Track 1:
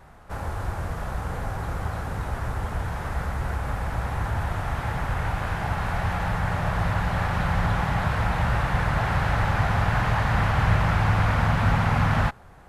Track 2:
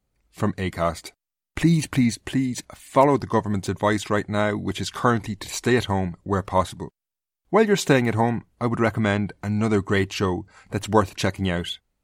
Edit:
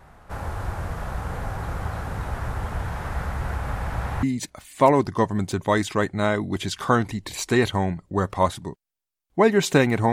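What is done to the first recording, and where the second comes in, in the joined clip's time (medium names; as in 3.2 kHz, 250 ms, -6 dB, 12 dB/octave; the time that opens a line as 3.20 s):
track 1
4.23 s: go over to track 2 from 2.38 s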